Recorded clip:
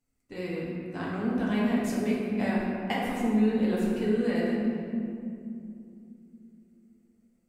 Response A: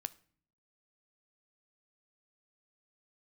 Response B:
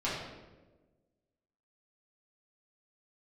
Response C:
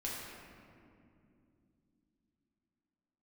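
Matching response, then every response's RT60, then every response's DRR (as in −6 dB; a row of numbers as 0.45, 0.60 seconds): C; 0.55, 1.2, 2.6 seconds; 13.5, −10.0, −5.5 decibels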